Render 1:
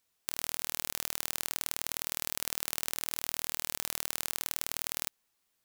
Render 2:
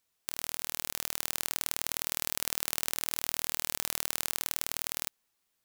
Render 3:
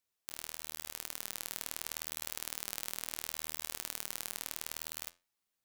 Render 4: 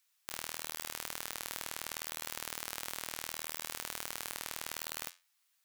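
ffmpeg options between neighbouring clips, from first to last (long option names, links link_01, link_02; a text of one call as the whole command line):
ffmpeg -i in.wav -af "dynaudnorm=framelen=250:gausssize=9:maxgain=11.5dB,volume=-1dB" out.wav
ffmpeg -i in.wav -af "flanger=delay=9.6:depth=3.1:regen=77:speed=0.72:shape=triangular,volume=-3dB" out.wav
ffmpeg -i in.wav -af "highpass=1200,alimiter=limit=-14.5dB:level=0:latency=1:release=445,asoftclip=type=tanh:threshold=-27.5dB,volume=10.5dB" out.wav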